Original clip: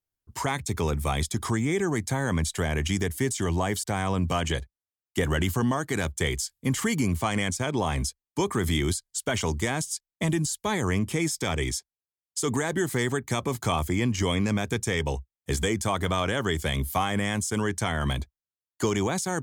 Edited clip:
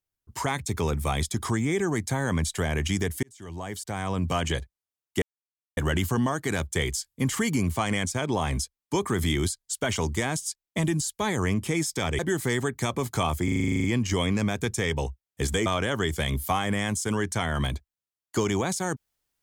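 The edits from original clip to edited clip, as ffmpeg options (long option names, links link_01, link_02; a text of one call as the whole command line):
ffmpeg -i in.wav -filter_complex "[0:a]asplit=15[link_01][link_02][link_03][link_04][link_05][link_06][link_07][link_08][link_09][link_10][link_11][link_12][link_13][link_14][link_15];[link_01]atrim=end=3.23,asetpts=PTS-STARTPTS,afade=type=out:start_time=3.226:duration=0.004:curve=hsin[link_16];[link_02]atrim=start=3.23:end=5.22,asetpts=PTS-STARTPTS,afade=type=in:duration=1.14,afade=type=out:start_time=1.986:duration=0.004:curve=hsin,apad=pad_dur=0.55[link_17];[link_03]atrim=start=5.22:end=11.642,asetpts=PTS-STARTPTS,afade=type=in:duration=0.004:curve=hsin[link_18];[link_04]atrim=start=12.678:end=13.972[link_19];[link_05]atrim=start=13.928:end=13.972[link_20];[link_06]atrim=start=13.928:end=13.972[link_21];[link_07]atrim=start=13.928:end=13.972[link_22];[link_08]atrim=start=13.928:end=13.972[link_23];[link_09]atrim=start=13.928:end=13.972[link_24];[link_10]atrim=start=13.928:end=13.972[link_25];[link_11]atrim=start=13.928:end=13.972[link_26];[link_12]atrim=start=13.928:end=13.972[link_27];[link_13]atrim=start=13.928:end=13.972[link_28];[link_14]atrim=start=13.928:end=15.752[link_29];[link_15]atrim=start=16.118[link_30];[link_16][link_17][link_18]concat=n=3:v=0:a=1[link_31];[link_31][link_19]acrossfade=duration=0.004:curve1=hsin:curve2=hsin[link_32];[link_32][link_20]acrossfade=duration=0.004:curve1=hsin:curve2=hsin[link_33];[link_33][link_21]acrossfade=duration=0.004:curve1=hsin:curve2=hsin[link_34];[link_34][link_22]acrossfade=duration=0.004:curve1=hsin:curve2=hsin[link_35];[link_35][link_23]acrossfade=duration=0.004:curve1=hsin:curve2=hsin[link_36];[link_36][link_24]acrossfade=duration=0.004:curve1=hsin:curve2=hsin[link_37];[link_37][link_25]acrossfade=duration=0.004:curve1=hsin:curve2=hsin[link_38];[link_38][link_26]acrossfade=duration=0.004:curve1=hsin:curve2=hsin[link_39];[link_39][link_27]acrossfade=duration=0.004:curve1=hsin:curve2=hsin[link_40];[link_40][link_28]acrossfade=duration=0.004:curve1=hsin:curve2=hsin[link_41];[link_41][link_29]acrossfade=duration=0.004:curve1=hsin:curve2=hsin[link_42];[link_42][link_30]acrossfade=duration=0.004:curve1=hsin:curve2=hsin" out.wav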